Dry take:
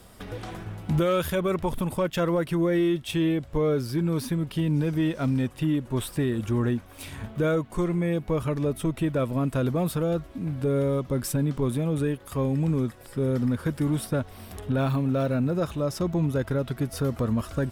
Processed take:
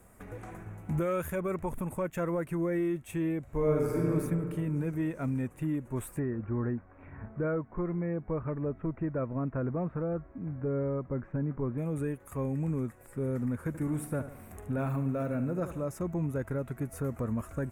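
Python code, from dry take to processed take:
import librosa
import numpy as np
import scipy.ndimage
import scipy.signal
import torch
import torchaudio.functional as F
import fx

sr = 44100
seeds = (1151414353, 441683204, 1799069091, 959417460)

y = fx.reverb_throw(x, sr, start_s=3.42, length_s=0.67, rt60_s=2.5, drr_db=-3.5)
y = fx.lowpass(y, sr, hz=1900.0, slope=24, at=(6.19, 11.78))
y = fx.echo_feedback(y, sr, ms=73, feedback_pct=47, wet_db=-11.5, at=(13.67, 15.88))
y = fx.band_shelf(y, sr, hz=4000.0, db=-15.5, octaves=1.1)
y = y * 10.0 ** (-7.0 / 20.0)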